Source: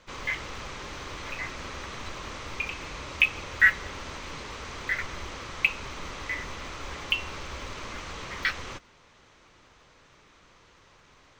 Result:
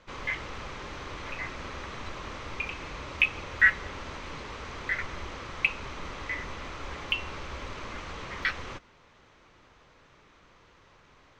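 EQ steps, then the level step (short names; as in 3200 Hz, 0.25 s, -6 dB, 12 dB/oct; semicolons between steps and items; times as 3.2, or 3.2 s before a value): LPF 3200 Hz 6 dB/oct; 0.0 dB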